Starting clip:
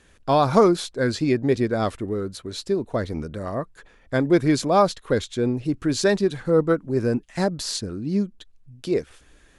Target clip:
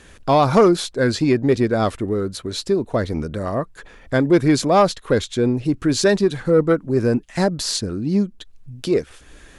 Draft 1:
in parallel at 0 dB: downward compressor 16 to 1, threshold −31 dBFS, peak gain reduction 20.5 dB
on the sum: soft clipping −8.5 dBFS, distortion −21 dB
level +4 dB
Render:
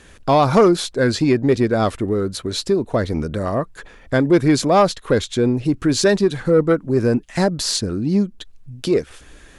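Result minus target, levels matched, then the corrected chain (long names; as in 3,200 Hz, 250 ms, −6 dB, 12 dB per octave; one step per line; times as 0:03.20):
downward compressor: peak gain reduction −10 dB
in parallel at 0 dB: downward compressor 16 to 1, threshold −41.5 dBFS, peak gain reduction 30.5 dB
on the sum: soft clipping −8.5 dBFS, distortion −21 dB
level +4 dB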